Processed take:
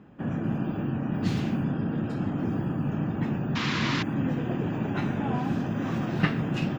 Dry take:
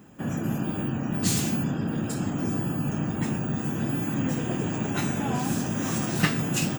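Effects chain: painted sound noise, 3.55–4.03 s, 900–7600 Hz -24 dBFS; distance through air 310 m

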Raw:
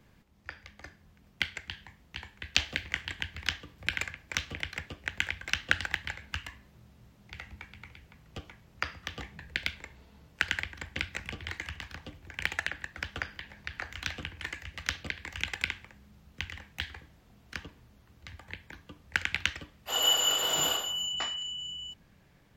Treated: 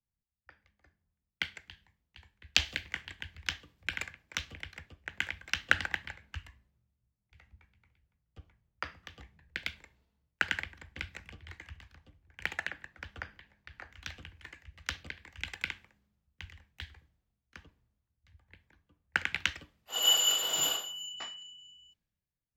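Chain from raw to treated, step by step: three bands expanded up and down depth 100%; trim -7 dB

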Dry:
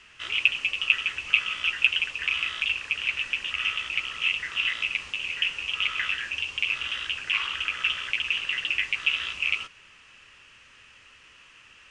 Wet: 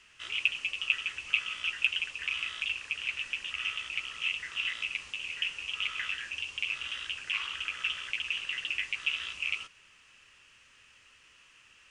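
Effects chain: treble shelf 6.2 kHz +10 dB; trim -8 dB

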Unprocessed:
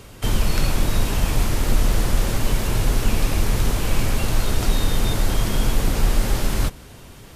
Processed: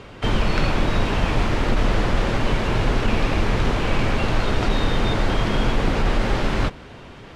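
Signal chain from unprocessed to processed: low-pass 3 kHz 12 dB/octave; bass shelf 140 Hz -8.5 dB; compressor with a negative ratio -21 dBFS; trim +5.5 dB

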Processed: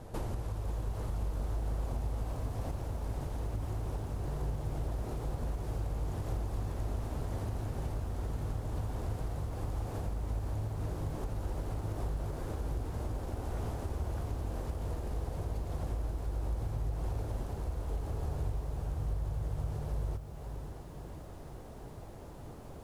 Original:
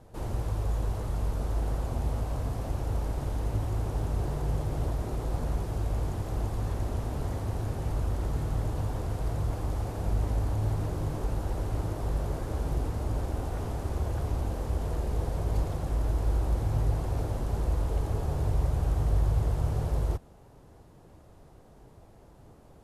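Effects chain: compression 10:1, threshold -39 dBFS, peak gain reduction 18.5 dB; bit-crushed delay 533 ms, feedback 55%, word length 11-bit, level -10 dB; trim +6 dB

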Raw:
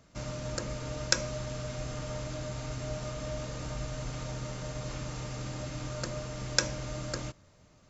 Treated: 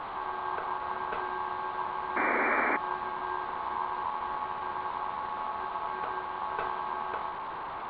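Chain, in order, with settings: one-bit delta coder 16 kbps, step -33 dBFS; tilt shelf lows +7 dB, about 770 Hz; ring modulator 980 Hz; painted sound noise, 2.16–2.77 s, 220–2400 Hz -28 dBFS

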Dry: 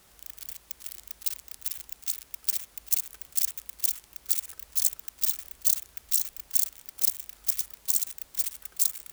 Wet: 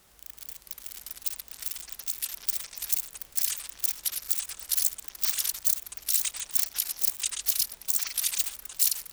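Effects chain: ever faster or slower copies 333 ms, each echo -7 st, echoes 3; trim -1.5 dB

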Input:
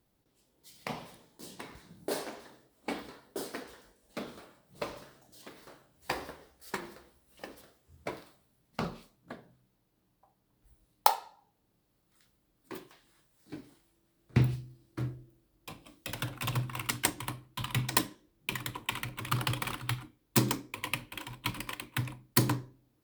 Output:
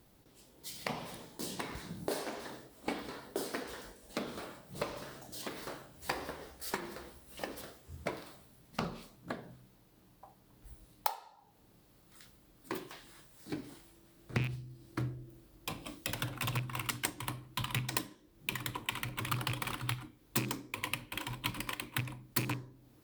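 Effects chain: rattle on loud lows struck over -27 dBFS, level -20 dBFS; compression 3:1, threshold -48 dBFS, peak gain reduction 23 dB; trim +10.5 dB

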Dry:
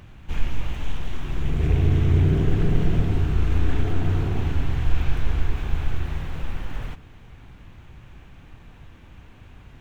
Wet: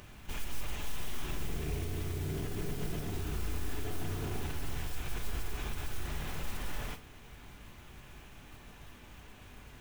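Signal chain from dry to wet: tone controls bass -6 dB, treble +7 dB; compression, threshold -24 dBFS, peak gain reduction 8.5 dB; peak limiter -26.5 dBFS, peak gain reduction 9.5 dB; modulation noise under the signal 16 dB; on a send: reverberation, pre-delay 3 ms, DRR 7 dB; on the sum: trim -2.5 dB

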